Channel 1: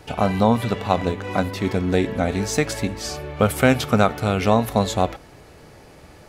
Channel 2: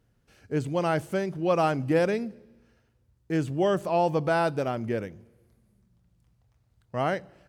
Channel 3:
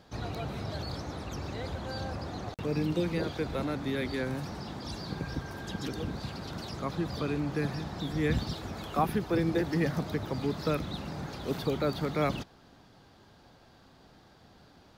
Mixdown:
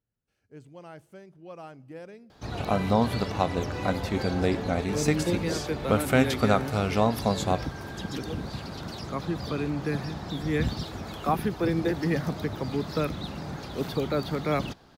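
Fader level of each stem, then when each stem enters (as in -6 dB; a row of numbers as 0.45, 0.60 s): -6.0, -19.5, +2.0 dB; 2.50, 0.00, 2.30 s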